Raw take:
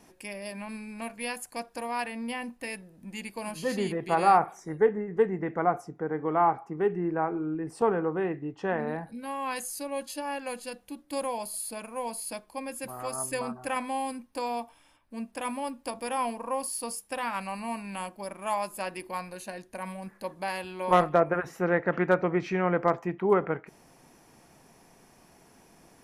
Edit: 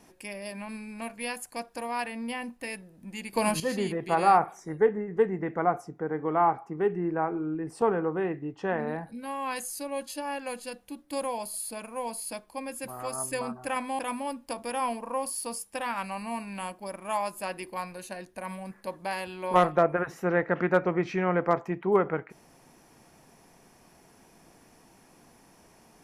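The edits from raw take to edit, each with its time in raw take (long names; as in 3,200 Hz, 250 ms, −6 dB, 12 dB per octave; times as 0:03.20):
0:03.33–0:03.60: clip gain +10.5 dB
0:13.99–0:15.36: remove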